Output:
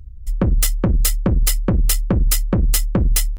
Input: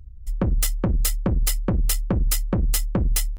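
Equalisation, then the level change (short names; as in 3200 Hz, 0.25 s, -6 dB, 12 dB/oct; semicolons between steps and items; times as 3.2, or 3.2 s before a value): bell 810 Hz -2.5 dB; +5.0 dB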